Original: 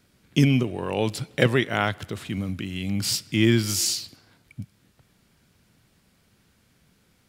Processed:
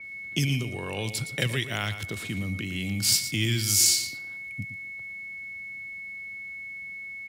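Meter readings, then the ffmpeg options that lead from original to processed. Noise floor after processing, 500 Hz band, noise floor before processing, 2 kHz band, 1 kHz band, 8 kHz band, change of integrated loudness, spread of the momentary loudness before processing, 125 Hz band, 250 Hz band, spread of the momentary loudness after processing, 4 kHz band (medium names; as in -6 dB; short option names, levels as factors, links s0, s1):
-39 dBFS, -10.5 dB, -64 dBFS, 0.0 dB, -9.0 dB, +5.0 dB, -3.5 dB, 19 LU, -4.0 dB, -9.0 dB, 15 LU, +1.5 dB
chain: -filter_complex "[0:a]aeval=exprs='val(0)+0.0126*sin(2*PI*2200*n/s)':c=same,acrossover=split=120|2200[s0][s1][s2];[s1]acompressor=threshold=0.0251:ratio=6[s3];[s0][s3][s2]amix=inputs=3:normalize=0,aecho=1:1:115:0.266,adynamicequalizer=threshold=0.00891:dfrequency=5200:dqfactor=0.7:tfrequency=5200:tqfactor=0.7:attack=5:release=100:ratio=0.375:range=3:mode=boostabove:tftype=highshelf"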